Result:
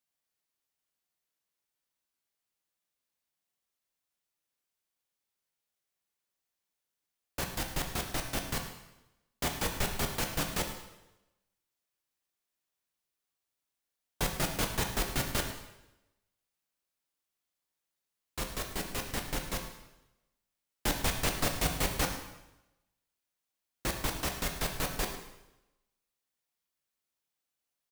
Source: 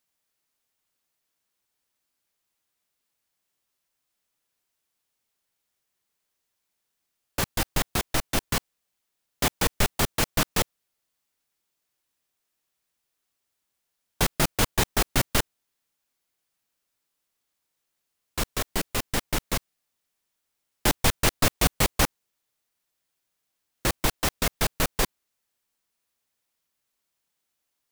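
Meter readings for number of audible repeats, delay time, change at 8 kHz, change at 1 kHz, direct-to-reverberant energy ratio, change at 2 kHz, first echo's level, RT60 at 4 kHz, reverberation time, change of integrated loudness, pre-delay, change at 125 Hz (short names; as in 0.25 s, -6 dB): 1, 0.107 s, -7.5 dB, -7.0 dB, 3.0 dB, -7.5 dB, -14.5 dB, 0.90 s, 0.95 s, -7.5 dB, 5 ms, -7.5 dB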